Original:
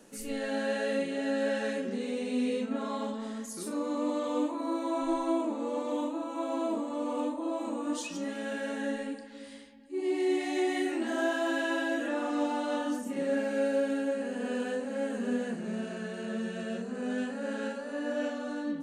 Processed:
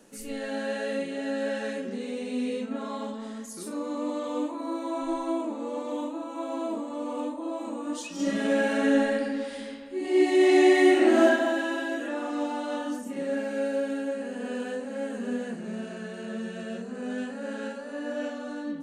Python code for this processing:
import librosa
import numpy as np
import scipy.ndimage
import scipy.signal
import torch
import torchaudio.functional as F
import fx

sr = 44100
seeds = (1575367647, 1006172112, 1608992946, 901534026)

y = fx.reverb_throw(x, sr, start_s=8.14, length_s=3.1, rt60_s=1.6, drr_db=-9.5)